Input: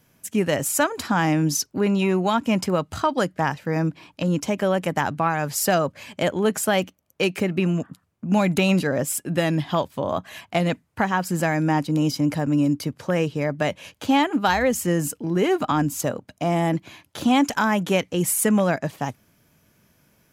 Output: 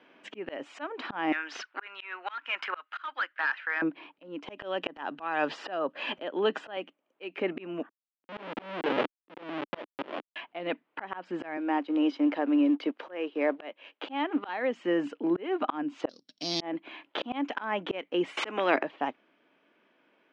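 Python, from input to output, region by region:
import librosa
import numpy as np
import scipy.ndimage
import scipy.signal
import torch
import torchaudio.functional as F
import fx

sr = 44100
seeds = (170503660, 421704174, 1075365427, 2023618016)

y = fx.chain(x, sr, fx.highpass_res(hz=1500.0, q=3.2),
    fx.clip_hard(threshold_db=-21.0), at=(1.32, 3.82))
y = fx.chain(y, sr, fx.notch(hz=2200.0, q=6.0),
    fx.band_squash(depth_pct=100), at=(4.49, 6.77))
y = fx.chain(y, sr, fx.lowpass(hz=2700.0, slope=6),
    fx.doubler(ms=35.0, db=-11.0),
    fx.schmitt(flips_db=-23.0), at=(7.89, 10.36))
y = fx.chain(y, sr, fx.law_mismatch(coded='A'),
    fx.highpass(hz=230.0, slope=24), at=(11.57, 14.49))
y = fx.chain(y, sr, fx.sample_sort(block=8),
    fx.curve_eq(hz=(140.0, 790.0, 2800.0, 4200.0), db=(0, -22, -7, 15)), at=(16.09, 16.61))
y = fx.chain(y, sr, fx.highpass(hz=180.0, slope=12),
    fx.peak_eq(hz=310.0, db=11.5, octaves=2.9),
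    fx.spectral_comp(ratio=2.0), at=(18.37, 18.83))
y = scipy.signal.sosfilt(scipy.signal.ellip(3, 1.0, 60, [290.0, 3100.0], 'bandpass', fs=sr, output='sos'), y)
y = fx.auto_swell(y, sr, attack_ms=664.0)
y = fx.rider(y, sr, range_db=4, speed_s=0.5)
y = y * 10.0 ** (3.0 / 20.0)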